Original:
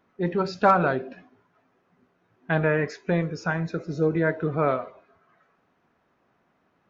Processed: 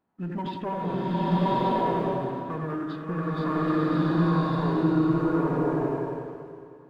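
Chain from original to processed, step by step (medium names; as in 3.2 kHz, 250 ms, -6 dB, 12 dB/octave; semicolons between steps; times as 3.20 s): hum notches 50/100/150/200/250 Hz; bucket-brigade echo 89 ms, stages 2048, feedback 50%, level -4.5 dB; peak limiter -16 dBFS, peak gain reduction 9.5 dB; formant shift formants -6 st; waveshaping leveller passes 1; swelling reverb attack 1140 ms, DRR -8.5 dB; trim -9 dB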